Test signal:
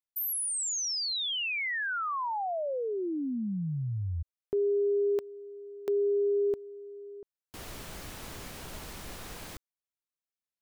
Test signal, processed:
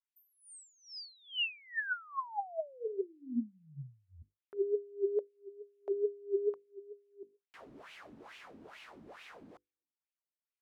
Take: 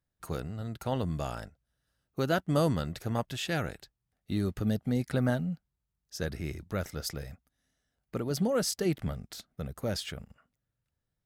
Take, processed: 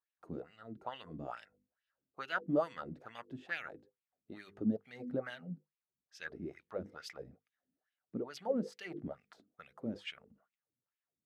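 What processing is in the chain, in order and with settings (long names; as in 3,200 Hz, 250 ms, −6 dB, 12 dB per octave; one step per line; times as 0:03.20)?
mains-hum notches 50/100/150/200/250/300/350/400/450/500 Hz
LFO wah 2.3 Hz 240–2,700 Hz, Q 3.6
level +2.5 dB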